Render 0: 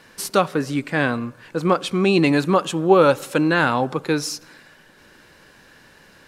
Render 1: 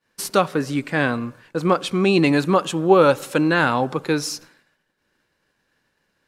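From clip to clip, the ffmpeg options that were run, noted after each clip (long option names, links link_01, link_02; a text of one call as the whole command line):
ffmpeg -i in.wav -af "agate=range=-33dB:threshold=-37dB:ratio=3:detection=peak" out.wav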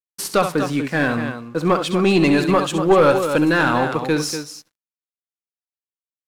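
ffmpeg -i in.wav -af "aeval=exprs='sgn(val(0))*max(abs(val(0))-0.00531,0)':channel_layout=same,aecho=1:1:67.06|242:0.316|0.316,aeval=exprs='(tanh(2.51*val(0)+0.15)-tanh(0.15))/2.51':channel_layout=same,volume=2.5dB" out.wav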